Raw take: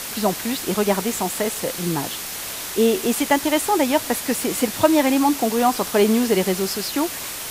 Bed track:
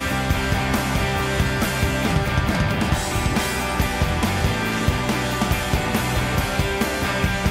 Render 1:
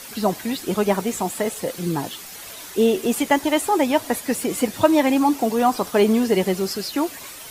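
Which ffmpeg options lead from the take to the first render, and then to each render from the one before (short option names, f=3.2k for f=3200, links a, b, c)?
-af "afftdn=nr=10:nf=-31"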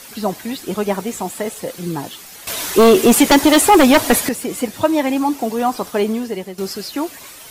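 -filter_complex "[0:a]asettb=1/sr,asplit=3[a][b][c];[a]atrim=end=2.474[d];[b]atrim=start=2.47:end=4.29,asetpts=PTS-STARTPTS,afade=t=in:d=0.004:c=qsin,afade=t=out:st=1.816:d=0.004:c=qsin,aeval=exprs='0.562*sin(PI/2*2.82*val(0)/0.562)':c=same[e];[c]atrim=start=4.286[f];[d][e]acrossfade=d=0.004:c1=hsin:c2=qsin[g];[g][f]acrossfade=d=0.004:c1=qsin:c2=hsin,asplit=2[h][i];[h]atrim=end=6.58,asetpts=PTS-STARTPTS,afade=t=out:st=5.89:d=0.69:silence=0.223872[j];[i]atrim=start=6.58,asetpts=PTS-STARTPTS,afade=t=in:d=0.004:c=hsin:silence=0.223872[k];[j][k]concat=n=2:v=0:a=1"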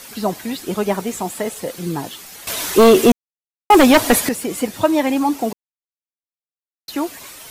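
-filter_complex "[0:a]asplit=5[a][b][c][d][e];[a]atrim=end=3.12,asetpts=PTS-STARTPTS,afade=t=out:st=3.116:d=0.004:c=hsin[f];[b]atrim=start=3.12:end=3.7,asetpts=PTS-STARTPTS,volume=0[g];[c]atrim=start=3.7:end=5.53,asetpts=PTS-STARTPTS,afade=t=in:d=0.004:c=hsin,afade=t=out:st=1.826:d=0.004:c=hsin[h];[d]atrim=start=5.53:end=6.88,asetpts=PTS-STARTPTS,volume=0[i];[e]atrim=start=6.88,asetpts=PTS-STARTPTS,afade=t=in:d=0.004:c=hsin[j];[f][g][h][i][j]concat=n=5:v=0:a=1"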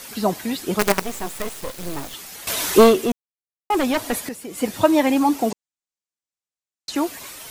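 -filter_complex "[0:a]asettb=1/sr,asplit=3[a][b][c];[a]atrim=end=0.794[d];[b]atrim=start=0.79:end=2.14,asetpts=PTS-STARTPTS,afade=t=in:d=0.004:c=qsin,afade=t=out:st=1.346:d=0.004:c=qsin,acrusher=bits=3:dc=4:mix=0:aa=0.000001[e];[c]atrim=start=2.136[f];[d][e]acrossfade=d=0.004:c1=hsin:c2=qsin[g];[g][f]acrossfade=d=0.004:c1=qsin:c2=hsin,asettb=1/sr,asplit=3[h][i][j];[h]atrim=end=5.504[k];[i]atrim=start=5.5:end=6.95,asetpts=PTS-STARTPTS,afade=t=in:d=0.004:c=qsin,afade=t=out:st=1.446:d=0.004:c=qsin,lowpass=f=7.6k:t=q:w=2[l];[j]atrim=start=6.946[m];[k][l]acrossfade=d=0.004:c1=hsin:c2=qsin[n];[n][m]acrossfade=d=0.004:c1=qsin:c2=hsin,asplit=3[o][p][q];[o]atrim=end=2.97,asetpts=PTS-STARTPTS,afade=t=out:st=2.81:d=0.16:silence=0.298538[r];[p]atrim=start=2.97:end=4.52,asetpts=PTS-STARTPTS,volume=-10.5dB[s];[q]atrim=start=4.52,asetpts=PTS-STARTPTS,afade=t=in:d=0.16:silence=0.298538[t];[r][s][t]concat=n=3:v=0:a=1"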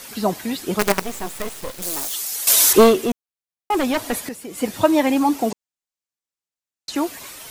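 -filter_complex "[0:a]asettb=1/sr,asplit=3[a][b][c];[a]atrim=end=1.824[d];[b]atrim=start=1.82:end=2.73,asetpts=PTS-STARTPTS,afade=t=in:d=0.004:c=qsin,afade=t=out:st=0.906:d=0.004:c=qsin,bass=f=250:g=-12,treble=f=4k:g=13[e];[c]atrim=start=2.726[f];[d][e]acrossfade=d=0.004:c1=hsin:c2=qsin[g];[g][f]acrossfade=d=0.004:c1=qsin:c2=hsin"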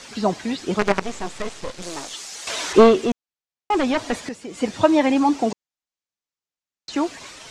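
-filter_complex "[0:a]lowpass=f=7.2k:w=0.5412,lowpass=f=7.2k:w=1.3066,acrossover=split=3100[a][b];[b]acompressor=threshold=-32dB:ratio=4:attack=1:release=60[c];[a][c]amix=inputs=2:normalize=0"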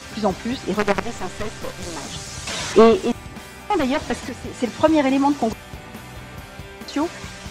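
-filter_complex "[1:a]volume=-15.5dB[a];[0:a][a]amix=inputs=2:normalize=0"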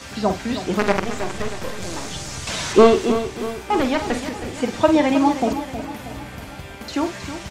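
-filter_complex "[0:a]asplit=2[a][b];[b]adelay=47,volume=-9dB[c];[a][c]amix=inputs=2:normalize=0,asplit=2[d][e];[e]aecho=0:1:317|634|951|1268|1585:0.282|0.144|0.0733|0.0374|0.0191[f];[d][f]amix=inputs=2:normalize=0"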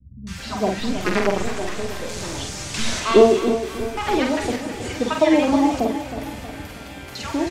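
-filter_complex "[0:a]asplit=2[a][b];[b]adelay=47,volume=-12dB[c];[a][c]amix=inputs=2:normalize=0,acrossover=split=160|960[d][e][f];[f]adelay=270[g];[e]adelay=380[h];[d][h][g]amix=inputs=3:normalize=0"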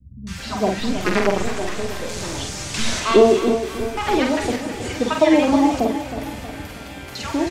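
-af "volume=1.5dB,alimiter=limit=-3dB:level=0:latency=1"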